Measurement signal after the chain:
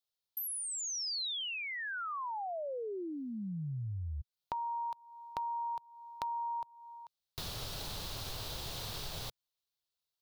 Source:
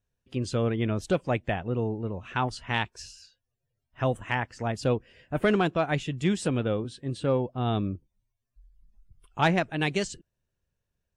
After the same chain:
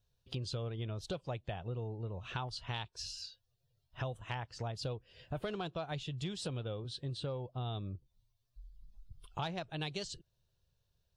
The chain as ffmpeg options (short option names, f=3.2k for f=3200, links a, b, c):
-af "equalizer=f=125:t=o:w=1:g=4,equalizer=f=250:t=o:w=1:g=-10,equalizer=f=2k:t=o:w=1:g=-9,equalizer=f=4k:t=o:w=1:g=10,equalizer=f=8k:t=o:w=1:g=-5,acompressor=threshold=-41dB:ratio=5,volume=3dB"